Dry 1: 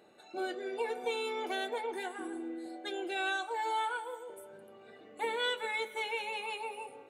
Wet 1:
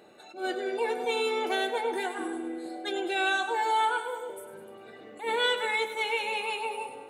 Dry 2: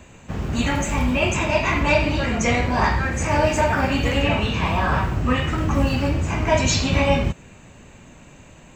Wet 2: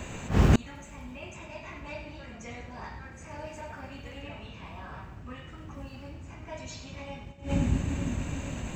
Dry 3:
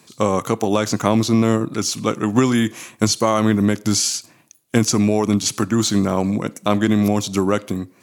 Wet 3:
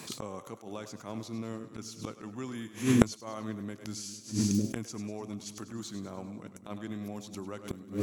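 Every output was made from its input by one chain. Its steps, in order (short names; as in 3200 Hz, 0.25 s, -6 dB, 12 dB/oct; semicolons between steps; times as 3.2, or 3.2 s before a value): split-band echo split 340 Hz, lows 0.454 s, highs 0.1 s, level -11.5 dB; flipped gate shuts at -15 dBFS, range -29 dB; attack slew limiter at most 170 dB/s; gain +6.5 dB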